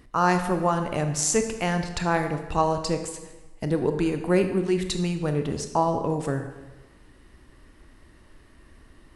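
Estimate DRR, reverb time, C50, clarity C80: 6.5 dB, 1.2 s, 8.0 dB, 10.0 dB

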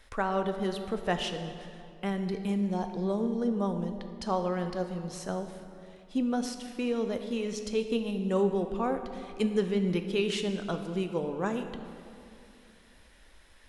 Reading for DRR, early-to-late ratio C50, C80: 6.5 dB, 8.0 dB, 9.0 dB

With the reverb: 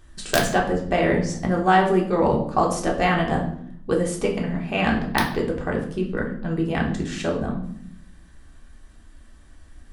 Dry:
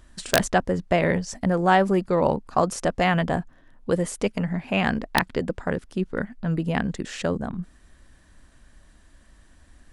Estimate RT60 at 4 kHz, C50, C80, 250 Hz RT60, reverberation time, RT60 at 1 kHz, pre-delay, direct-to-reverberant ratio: 0.50 s, 7.5 dB, 11.5 dB, 1.1 s, 0.65 s, 0.55 s, 3 ms, -1.5 dB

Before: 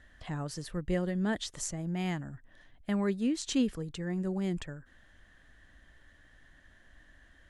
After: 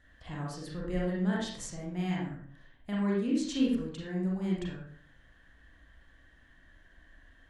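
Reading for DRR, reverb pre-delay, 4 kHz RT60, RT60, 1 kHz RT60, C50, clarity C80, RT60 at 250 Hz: -4.5 dB, 33 ms, 0.35 s, 0.50 s, 0.50 s, 1.0 dB, 5.5 dB, 0.60 s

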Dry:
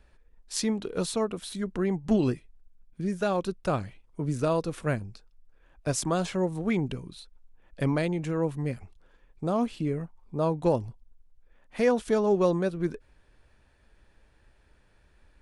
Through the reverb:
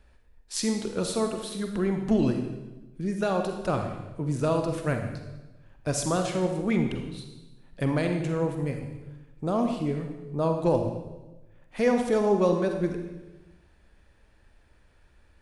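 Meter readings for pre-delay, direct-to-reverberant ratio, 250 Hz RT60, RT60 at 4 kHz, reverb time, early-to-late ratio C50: 37 ms, 4.5 dB, 1.3 s, 0.95 s, 1.1 s, 5.5 dB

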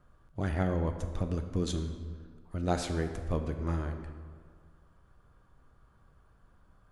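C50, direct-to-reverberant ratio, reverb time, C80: 8.0 dB, 6.5 dB, 1.8 s, 9.5 dB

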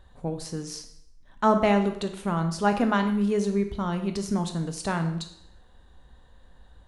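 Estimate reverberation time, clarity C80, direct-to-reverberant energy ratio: 0.70 s, 12.5 dB, 6.0 dB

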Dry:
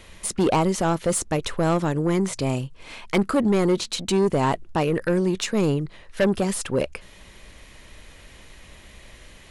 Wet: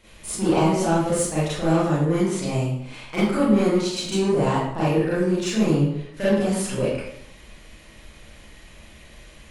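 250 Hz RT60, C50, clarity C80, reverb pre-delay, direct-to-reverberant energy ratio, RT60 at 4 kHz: 0.75 s, -1.5 dB, 3.0 dB, 31 ms, -10.5 dB, 0.55 s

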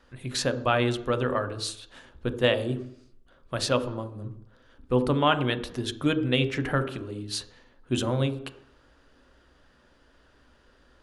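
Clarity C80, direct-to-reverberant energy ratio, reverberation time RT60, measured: 15.0 dB, 9.0 dB, 0.70 s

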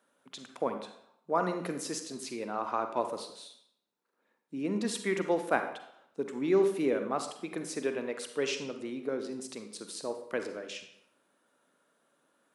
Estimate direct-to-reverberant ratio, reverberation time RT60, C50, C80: 6.5 dB, 0.75 s, 7.5 dB, 11.0 dB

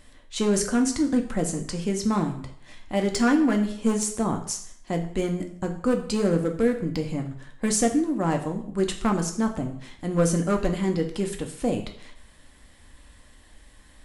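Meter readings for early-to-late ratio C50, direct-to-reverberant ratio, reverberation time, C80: 10.0 dB, 3.5 dB, 0.65 s, 13.0 dB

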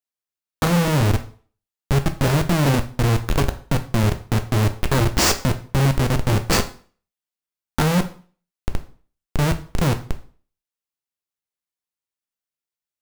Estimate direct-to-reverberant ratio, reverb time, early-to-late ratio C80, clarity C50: 7.0 dB, 0.45 s, 18.5 dB, 14.0 dB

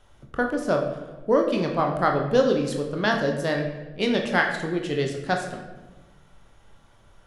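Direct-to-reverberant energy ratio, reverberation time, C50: 2.0 dB, 1.2 s, 6.0 dB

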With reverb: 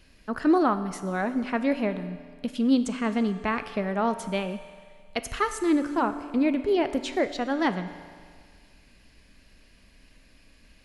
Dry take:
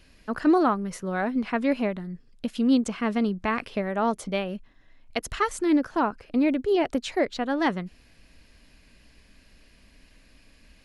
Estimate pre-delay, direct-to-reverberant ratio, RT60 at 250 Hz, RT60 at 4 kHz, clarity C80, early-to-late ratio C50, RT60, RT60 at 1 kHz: 7 ms, 10.0 dB, 1.9 s, 1.9 s, 12.5 dB, 11.5 dB, 1.9 s, 1.9 s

